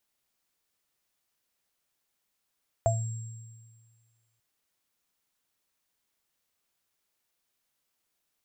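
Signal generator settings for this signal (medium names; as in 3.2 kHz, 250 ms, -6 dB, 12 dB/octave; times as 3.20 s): sine partials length 1.54 s, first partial 114 Hz, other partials 672/7540 Hz, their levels 6/-12.5 dB, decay 1.69 s, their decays 0.22/1.90 s, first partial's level -23.5 dB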